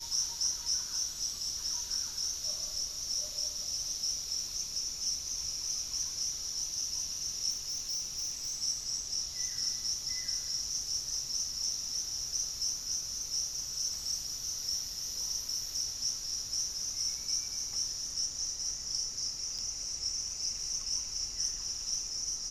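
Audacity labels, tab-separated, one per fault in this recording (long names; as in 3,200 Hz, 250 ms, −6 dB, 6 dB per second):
7.500000	8.590000	clipping −32 dBFS
19.580000	19.590000	drop-out 6.3 ms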